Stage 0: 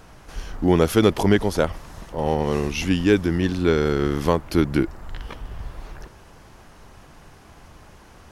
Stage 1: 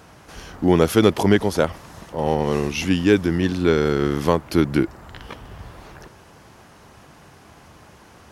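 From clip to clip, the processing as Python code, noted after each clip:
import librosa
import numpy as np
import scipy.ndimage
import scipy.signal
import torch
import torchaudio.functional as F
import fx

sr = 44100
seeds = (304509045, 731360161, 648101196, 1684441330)

y = scipy.signal.sosfilt(scipy.signal.butter(2, 83.0, 'highpass', fs=sr, output='sos'), x)
y = F.gain(torch.from_numpy(y), 1.5).numpy()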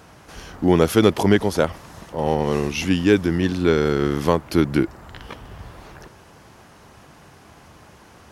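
y = x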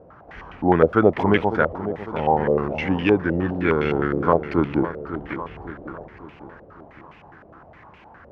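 y = fx.echo_feedback(x, sr, ms=552, feedback_pct=51, wet_db=-11)
y = fx.filter_held_lowpass(y, sr, hz=9.7, low_hz=550.0, high_hz=2500.0)
y = F.gain(torch.from_numpy(y), -3.5).numpy()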